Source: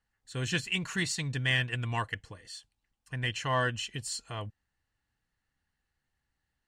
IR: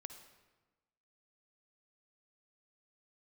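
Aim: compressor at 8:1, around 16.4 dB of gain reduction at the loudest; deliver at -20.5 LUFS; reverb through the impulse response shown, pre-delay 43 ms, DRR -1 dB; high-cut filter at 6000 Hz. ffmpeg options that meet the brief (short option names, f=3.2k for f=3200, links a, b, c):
-filter_complex "[0:a]lowpass=6k,acompressor=threshold=-42dB:ratio=8,asplit=2[a][b];[1:a]atrim=start_sample=2205,adelay=43[c];[b][c]afir=irnorm=-1:irlink=0,volume=6dB[d];[a][d]amix=inputs=2:normalize=0,volume=22dB"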